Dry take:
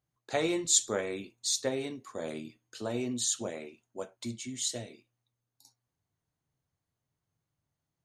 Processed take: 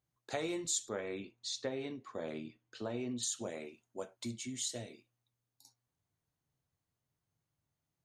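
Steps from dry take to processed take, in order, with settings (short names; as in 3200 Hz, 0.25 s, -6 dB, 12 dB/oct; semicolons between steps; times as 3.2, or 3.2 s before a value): 0.89–3.23 LPF 3900 Hz 12 dB/oct; compressor 2.5:1, threshold -34 dBFS, peak gain reduction 10 dB; gain -2 dB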